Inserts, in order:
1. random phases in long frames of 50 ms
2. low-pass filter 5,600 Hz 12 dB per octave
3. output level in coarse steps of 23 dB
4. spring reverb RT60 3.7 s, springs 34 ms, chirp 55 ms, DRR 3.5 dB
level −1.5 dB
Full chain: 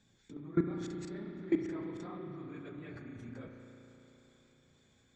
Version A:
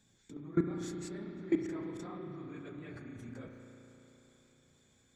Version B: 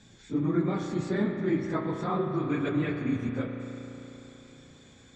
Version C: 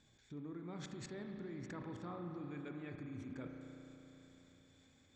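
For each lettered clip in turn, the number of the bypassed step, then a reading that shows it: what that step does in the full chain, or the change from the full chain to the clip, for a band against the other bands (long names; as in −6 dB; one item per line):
2, 4 kHz band +1.5 dB
3, change in crest factor −7.5 dB
1, 500 Hz band −6.0 dB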